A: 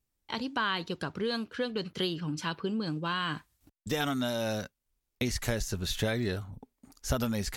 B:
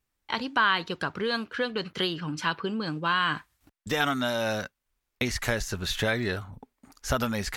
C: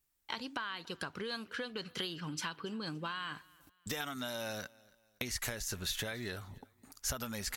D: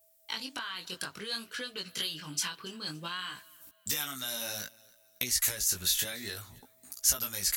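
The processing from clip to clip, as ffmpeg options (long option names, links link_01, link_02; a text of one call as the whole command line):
ffmpeg -i in.wav -af "equalizer=frequency=1500:width=0.51:gain=8.5" out.wav
ffmpeg -i in.wav -af "acompressor=threshold=-31dB:ratio=10,crystalizer=i=2:c=0,aecho=1:1:284|568:0.0631|0.024,volume=-6dB" out.wav
ffmpeg -i in.wav -filter_complex "[0:a]aeval=exprs='val(0)+0.000398*sin(2*PI*650*n/s)':channel_layout=same,flanger=delay=15.5:depth=6.8:speed=0.59,acrossover=split=800[link_01][link_02];[link_02]crystalizer=i=5:c=0[link_03];[link_01][link_03]amix=inputs=2:normalize=0" out.wav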